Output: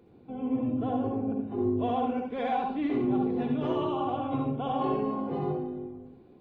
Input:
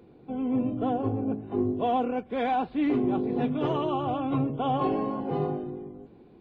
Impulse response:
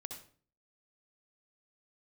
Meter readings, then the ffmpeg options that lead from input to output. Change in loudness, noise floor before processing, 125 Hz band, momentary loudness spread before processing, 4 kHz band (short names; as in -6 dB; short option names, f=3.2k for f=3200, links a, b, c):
-1.5 dB, -54 dBFS, -2.5 dB, 7 LU, -3.0 dB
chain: -filter_complex "[1:a]atrim=start_sample=2205[a];[0:a][a]afir=irnorm=-1:irlink=0"